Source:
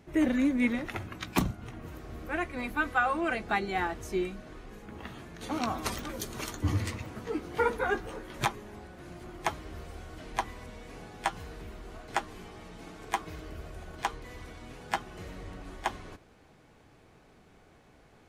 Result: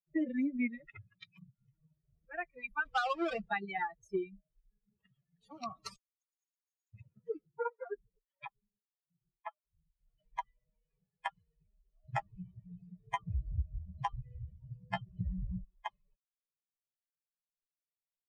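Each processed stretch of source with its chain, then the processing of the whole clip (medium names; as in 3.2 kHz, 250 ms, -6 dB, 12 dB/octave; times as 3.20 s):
1.30–1.94 s: comb 6.3 ms, depth 40% + compression 4:1, threshold -40 dBFS
2.85–3.49 s: square wave that keeps the level + treble shelf 6.9 kHz -9.5 dB
5.96–6.94 s: band-pass filter 6.7 kHz, Q 14 + compression 4:1, threshold -55 dBFS
7.47–10.00 s: harmonic tremolo 1.7 Hz, depth 100%, crossover 430 Hz + distance through air 220 m
12.02–15.64 s: peaking EQ 73 Hz +14 dB 3 oct + doubling 16 ms -4 dB
whole clip: expander on every frequency bin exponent 3; low-pass 3.8 kHz 12 dB/octave; compression 4:1, threshold -35 dBFS; trim +4 dB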